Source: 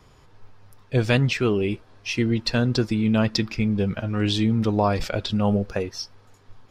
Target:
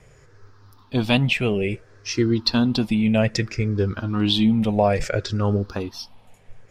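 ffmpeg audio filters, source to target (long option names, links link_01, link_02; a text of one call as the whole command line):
ffmpeg -i in.wav -af "afftfilt=real='re*pow(10,12/40*sin(2*PI*(0.51*log(max(b,1)*sr/1024/100)/log(2)-(-0.61)*(pts-256)/sr)))':imag='im*pow(10,12/40*sin(2*PI*(0.51*log(max(b,1)*sr/1024/100)/log(2)-(-0.61)*(pts-256)/sr)))':win_size=1024:overlap=0.75" out.wav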